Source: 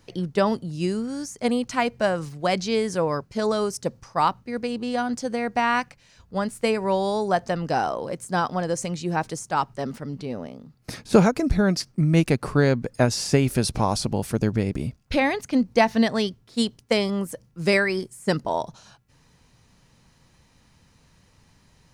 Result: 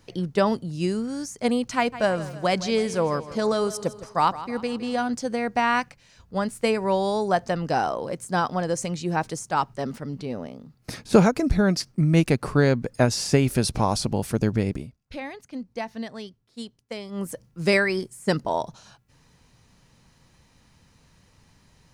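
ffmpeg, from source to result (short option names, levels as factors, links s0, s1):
-filter_complex "[0:a]asettb=1/sr,asplit=3[s0][s1][s2];[s0]atrim=end=1.764[s3];[s1]atrim=start=1.76:end=5.08,asetpts=PTS-STARTPTS,afade=t=in:d=0.004:c=qsin,afade=t=out:st=3.316:d=0.004:c=qsin,aecho=1:1:161|322|483|644|805:0.178|0.0889|0.0445|0.0222|0.0111,atrim=end_sample=146412[s4];[s2]atrim=start=5.076[s5];[s3][s4]acrossfade=d=0.004:c1=hsin:c2=qsin[s6];[s6][s5]acrossfade=d=0.004:c1=qsin:c2=hsin,asplit=3[s7][s8][s9];[s7]atrim=end=14.87,asetpts=PTS-STARTPTS,afade=t=out:st=14.71:d=0.16:silence=0.211349[s10];[s8]atrim=start=14.87:end=17.1,asetpts=PTS-STARTPTS,volume=0.211[s11];[s9]atrim=start=17.1,asetpts=PTS-STARTPTS,afade=t=in:d=0.16:silence=0.211349[s12];[s10][s11][s12]concat=n=3:v=0:a=1"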